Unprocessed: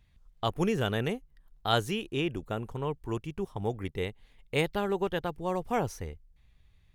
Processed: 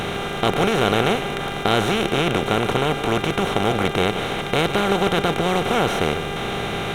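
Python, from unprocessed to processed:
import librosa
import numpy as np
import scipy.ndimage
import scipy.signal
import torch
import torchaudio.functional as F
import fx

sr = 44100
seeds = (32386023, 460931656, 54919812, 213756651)

p1 = fx.bin_compress(x, sr, power=0.2)
p2 = fx.dmg_buzz(p1, sr, base_hz=400.0, harmonics=9, level_db=-36.0, tilt_db=-3, odd_only=False)
p3 = p2 + fx.echo_single(p2, sr, ms=150, db=-11.5, dry=0)
y = F.gain(torch.from_numpy(p3), 2.0).numpy()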